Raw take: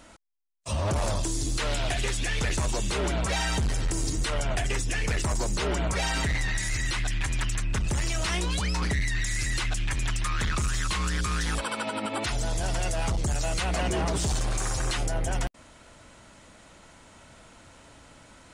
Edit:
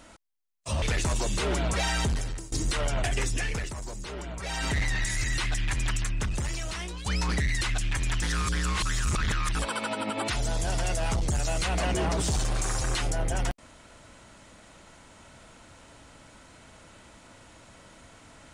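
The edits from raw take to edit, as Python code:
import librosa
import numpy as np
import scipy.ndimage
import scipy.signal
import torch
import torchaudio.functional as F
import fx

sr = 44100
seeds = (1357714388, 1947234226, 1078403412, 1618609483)

y = fx.edit(x, sr, fx.cut(start_s=0.82, length_s=1.53),
    fx.fade_out_to(start_s=3.59, length_s=0.46, floor_db=-22.5),
    fx.fade_down_up(start_s=4.89, length_s=1.41, db=-10.0, fade_s=0.38),
    fx.fade_out_to(start_s=7.5, length_s=1.09, floor_db=-12.0),
    fx.cut(start_s=9.14, length_s=0.43),
    fx.reverse_span(start_s=10.18, length_s=1.33), tone=tone)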